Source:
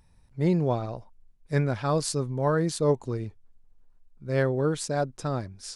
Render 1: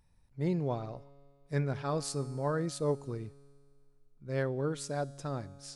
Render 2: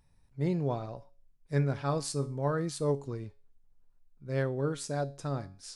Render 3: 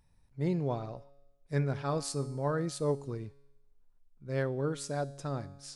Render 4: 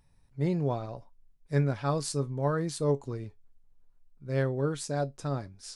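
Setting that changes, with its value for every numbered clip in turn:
tuned comb filter, decay: 2.1, 0.39, 1, 0.15 seconds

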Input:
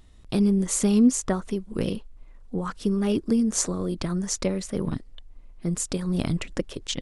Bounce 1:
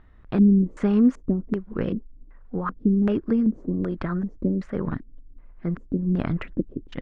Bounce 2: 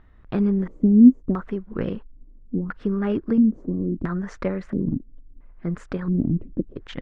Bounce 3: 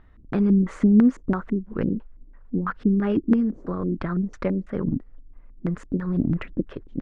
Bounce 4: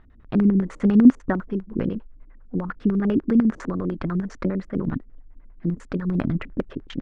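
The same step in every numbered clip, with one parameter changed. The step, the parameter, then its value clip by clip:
auto-filter low-pass, speed: 1.3, 0.74, 3, 10 Hertz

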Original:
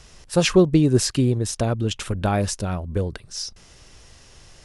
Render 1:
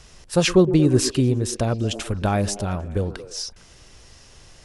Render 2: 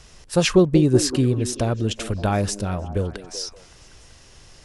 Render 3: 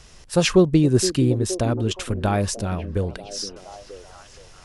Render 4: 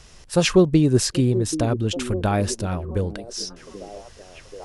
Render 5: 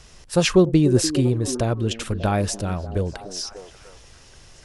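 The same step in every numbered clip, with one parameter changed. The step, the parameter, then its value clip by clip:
echo through a band-pass that steps, delay time: 114, 190, 469, 783, 295 milliseconds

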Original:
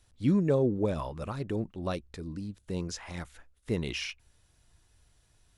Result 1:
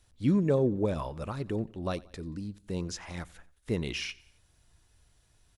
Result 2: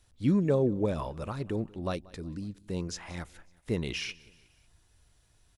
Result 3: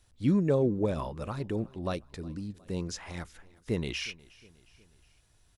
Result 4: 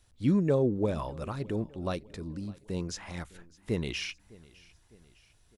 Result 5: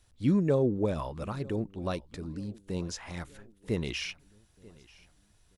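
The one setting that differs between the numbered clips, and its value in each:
repeating echo, delay time: 90, 184, 362, 606, 937 milliseconds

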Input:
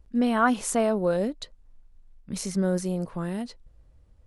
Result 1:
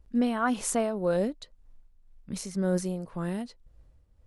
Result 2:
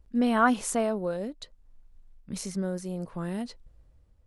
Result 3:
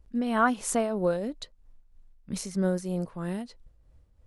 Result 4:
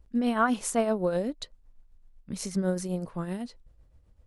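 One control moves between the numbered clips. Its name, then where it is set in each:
shaped tremolo, speed: 1.9, 0.63, 3.1, 7.9 Hertz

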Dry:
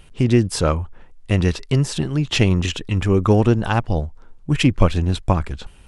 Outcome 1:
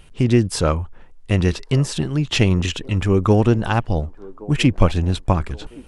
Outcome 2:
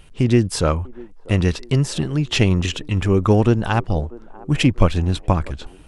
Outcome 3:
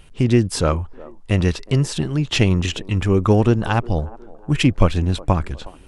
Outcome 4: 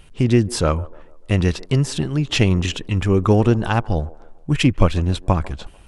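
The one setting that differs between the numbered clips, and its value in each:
delay with a band-pass on its return, delay time: 1,120, 644, 364, 147 milliseconds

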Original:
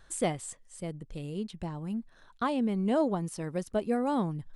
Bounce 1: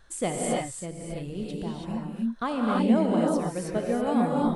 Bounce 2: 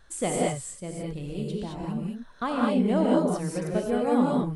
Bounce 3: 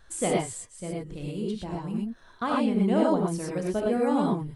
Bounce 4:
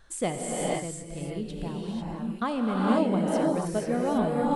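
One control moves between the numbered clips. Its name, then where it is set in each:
reverb whose tail is shaped and stops, gate: 350, 240, 140, 520 milliseconds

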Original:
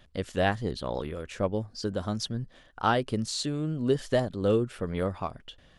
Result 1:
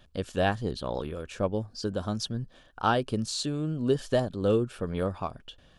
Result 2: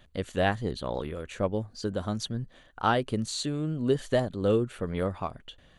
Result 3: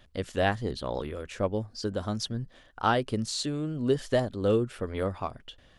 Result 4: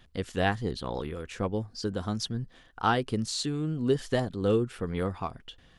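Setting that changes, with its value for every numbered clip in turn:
notch filter, centre frequency: 2,000, 5,200, 170, 590 Hertz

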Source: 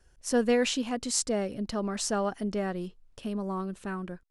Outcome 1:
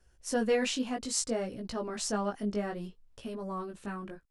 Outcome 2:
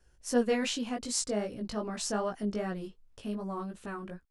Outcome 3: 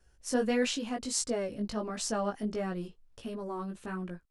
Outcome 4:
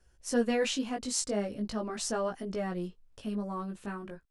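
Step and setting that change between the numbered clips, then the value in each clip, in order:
chorus effect, speed: 0.62, 2.6, 1.5, 0.4 Hertz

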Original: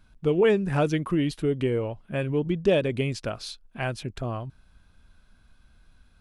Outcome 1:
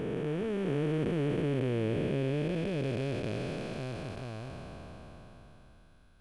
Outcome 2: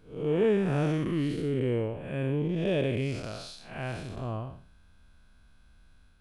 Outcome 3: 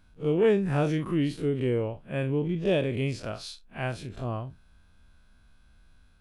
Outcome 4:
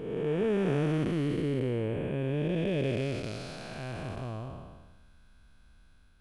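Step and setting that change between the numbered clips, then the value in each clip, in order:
spectrum smeared in time, width: 1,710, 219, 83, 568 milliseconds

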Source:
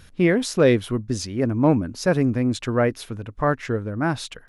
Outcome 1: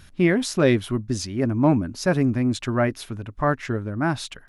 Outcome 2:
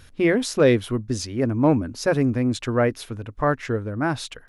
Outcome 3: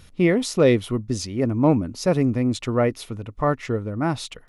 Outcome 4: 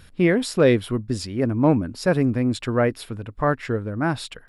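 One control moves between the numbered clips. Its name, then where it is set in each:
notch filter, centre frequency: 480, 180, 1,600, 6,200 Hertz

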